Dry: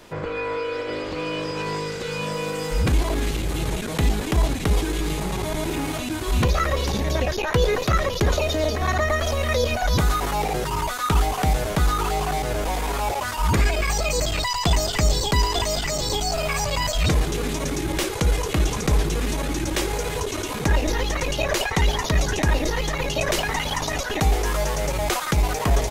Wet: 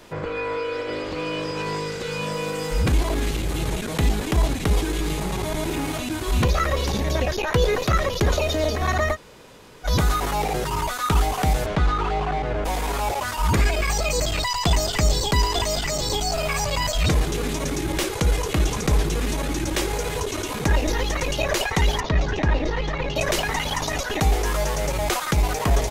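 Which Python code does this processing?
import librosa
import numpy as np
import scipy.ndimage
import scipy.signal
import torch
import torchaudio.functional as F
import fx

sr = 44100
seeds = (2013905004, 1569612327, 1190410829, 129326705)

y = fx.lowpass(x, sr, hz=fx.line((11.65, 4000.0), (12.64, 2300.0)), slope=12, at=(11.65, 12.64), fade=0.02)
y = fx.air_absorb(y, sr, metres=190.0, at=(22.0, 23.16))
y = fx.edit(y, sr, fx.room_tone_fill(start_s=9.14, length_s=0.72, crossfade_s=0.06), tone=tone)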